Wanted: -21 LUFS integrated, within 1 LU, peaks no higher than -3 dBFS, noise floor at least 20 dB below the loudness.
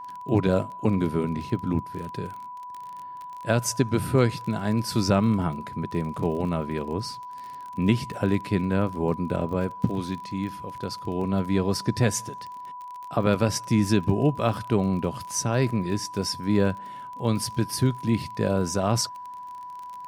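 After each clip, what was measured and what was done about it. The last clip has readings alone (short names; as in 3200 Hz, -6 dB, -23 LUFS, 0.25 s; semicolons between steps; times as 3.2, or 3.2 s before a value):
ticks 33/s; steady tone 990 Hz; tone level -36 dBFS; loudness -26.0 LUFS; peak -8.0 dBFS; loudness target -21.0 LUFS
-> de-click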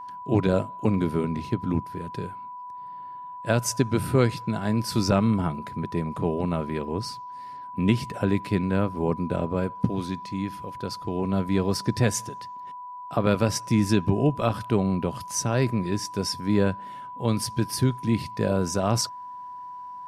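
ticks 0/s; steady tone 990 Hz; tone level -36 dBFS
-> notch 990 Hz, Q 30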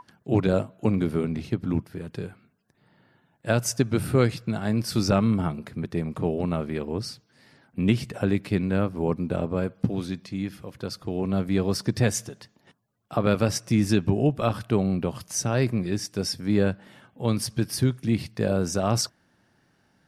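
steady tone none; loudness -26.0 LUFS; peak -8.5 dBFS; loudness target -21.0 LUFS
-> gain +5 dB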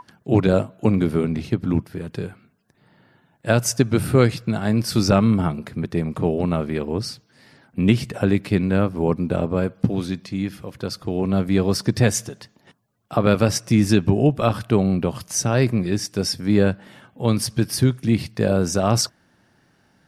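loudness -21.0 LUFS; peak -3.5 dBFS; noise floor -62 dBFS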